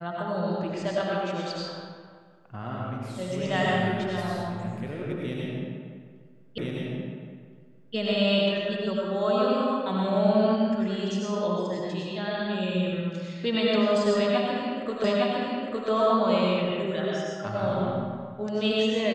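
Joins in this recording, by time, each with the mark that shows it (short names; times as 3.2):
6.58 repeat of the last 1.37 s
15.04 repeat of the last 0.86 s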